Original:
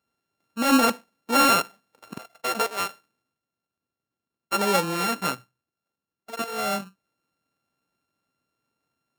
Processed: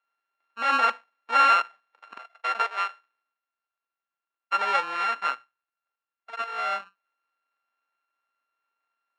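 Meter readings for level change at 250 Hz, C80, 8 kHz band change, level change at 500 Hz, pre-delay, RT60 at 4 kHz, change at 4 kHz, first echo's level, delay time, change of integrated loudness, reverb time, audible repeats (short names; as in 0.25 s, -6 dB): -21.5 dB, none, under -15 dB, -9.5 dB, none, none, -5.5 dB, none, none, -1.0 dB, none, none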